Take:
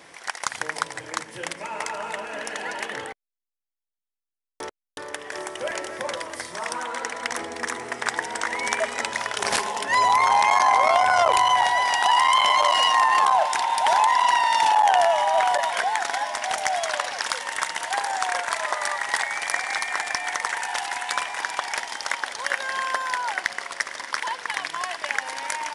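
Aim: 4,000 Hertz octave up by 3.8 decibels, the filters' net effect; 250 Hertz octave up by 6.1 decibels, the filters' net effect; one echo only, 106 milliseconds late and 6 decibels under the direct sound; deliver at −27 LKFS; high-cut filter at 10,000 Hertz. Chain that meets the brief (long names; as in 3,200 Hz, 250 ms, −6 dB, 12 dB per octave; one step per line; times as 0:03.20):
low-pass filter 10,000 Hz
parametric band 250 Hz +8 dB
parametric band 4,000 Hz +5.5 dB
single-tap delay 106 ms −6 dB
level −6 dB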